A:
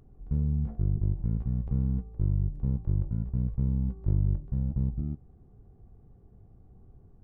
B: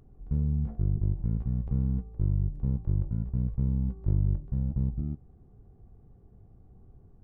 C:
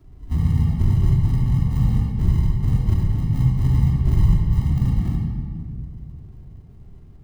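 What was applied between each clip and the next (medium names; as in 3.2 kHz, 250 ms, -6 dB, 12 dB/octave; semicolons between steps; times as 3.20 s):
no audible change
phase randomisation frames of 50 ms; in parallel at -6.5 dB: sample-rate reducer 1 kHz, jitter 0%; on the sum: simulated room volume 3600 m³, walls mixed, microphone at 3 m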